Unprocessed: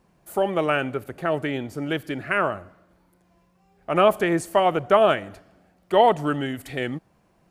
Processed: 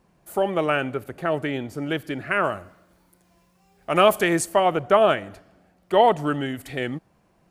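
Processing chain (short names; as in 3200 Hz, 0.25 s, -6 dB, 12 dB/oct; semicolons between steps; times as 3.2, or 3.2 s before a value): 2.43–4.44 high shelf 3800 Hz -> 2500 Hz +10 dB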